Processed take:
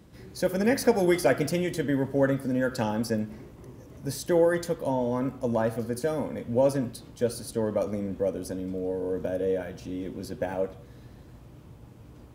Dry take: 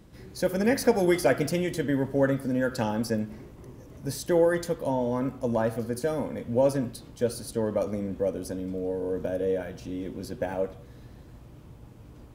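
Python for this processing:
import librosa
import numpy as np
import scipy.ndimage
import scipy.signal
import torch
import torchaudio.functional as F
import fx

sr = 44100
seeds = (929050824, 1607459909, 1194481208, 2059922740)

y = scipy.signal.sosfilt(scipy.signal.butter(2, 49.0, 'highpass', fs=sr, output='sos'), x)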